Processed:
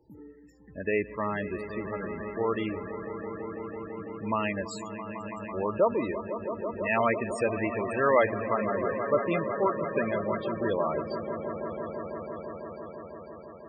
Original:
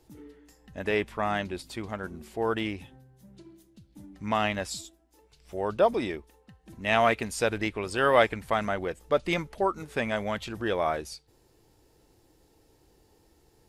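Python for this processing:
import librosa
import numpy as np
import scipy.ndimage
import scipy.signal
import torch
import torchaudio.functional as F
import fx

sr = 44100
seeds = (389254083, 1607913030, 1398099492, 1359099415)

y = fx.notch_comb(x, sr, f0_hz=740.0)
y = fx.echo_swell(y, sr, ms=166, loudest=5, wet_db=-12)
y = fx.spec_topn(y, sr, count=32)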